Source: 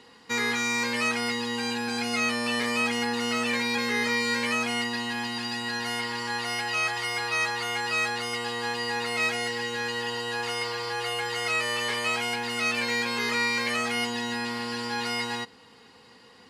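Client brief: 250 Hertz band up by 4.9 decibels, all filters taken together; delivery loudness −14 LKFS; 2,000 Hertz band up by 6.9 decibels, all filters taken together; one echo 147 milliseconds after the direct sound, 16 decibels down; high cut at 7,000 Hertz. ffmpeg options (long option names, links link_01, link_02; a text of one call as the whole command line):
ffmpeg -i in.wav -af "lowpass=7000,equalizer=frequency=250:width_type=o:gain=5,equalizer=frequency=2000:width_type=o:gain=8,aecho=1:1:147:0.158,volume=8dB" out.wav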